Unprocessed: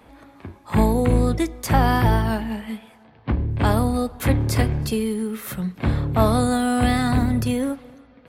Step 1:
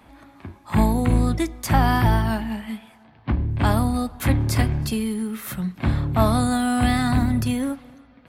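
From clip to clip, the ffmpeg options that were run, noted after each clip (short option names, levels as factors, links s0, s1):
-af "equalizer=f=470:t=o:w=0.41:g=-9"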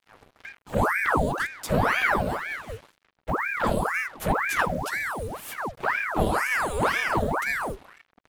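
-af "afreqshift=-490,acrusher=bits=6:mix=0:aa=0.5,aeval=exprs='val(0)*sin(2*PI*1100*n/s+1100*0.85/2*sin(2*PI*2*n/s))':c=same,volume=0.75"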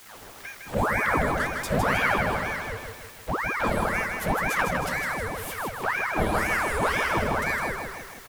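-filter_complex "[0:a]aeval=exprs='val(0)+0.5*0.0168*sgn(val(0))':c=same,asplit=2[s0][s1];[s1]aecho=0:1:157|314|471|628|785|942:0.562|0.281|0.141|0.0703|0.0351|0.0176[s2];[s0][s2]amix=inputs=2:normalize=0,volume=0.75"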